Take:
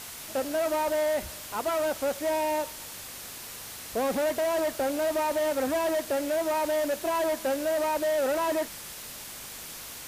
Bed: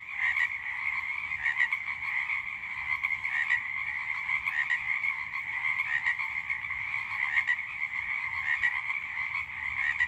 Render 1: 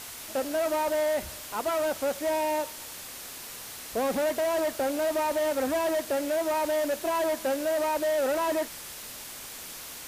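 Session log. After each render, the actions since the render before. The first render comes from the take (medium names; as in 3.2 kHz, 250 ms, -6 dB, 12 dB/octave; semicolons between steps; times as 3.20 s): de-hum 50 Hz, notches 4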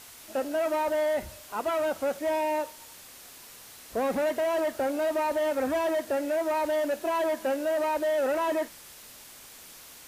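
noise print and reduce 7 dB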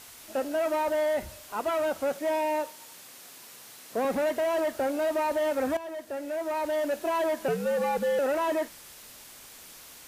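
2.12–4.05 s: high-pass 120 Hz 24 dB/octave; 5.77–6.96 s: fade in, from -13.5 dB; 7.48–8.19 s: frequency shift -97 Hz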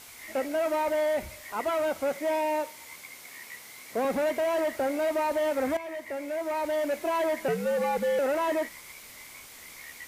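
add bed -18 dB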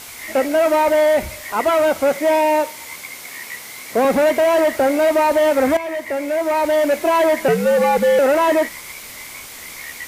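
trim +12 dB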